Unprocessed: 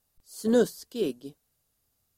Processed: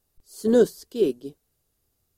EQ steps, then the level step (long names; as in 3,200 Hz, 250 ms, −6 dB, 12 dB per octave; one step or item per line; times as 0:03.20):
low-shelf EQ 110 Hz +7 dB
parametric band 380 Hz +8 dB 0.68 octaves
0.0 dB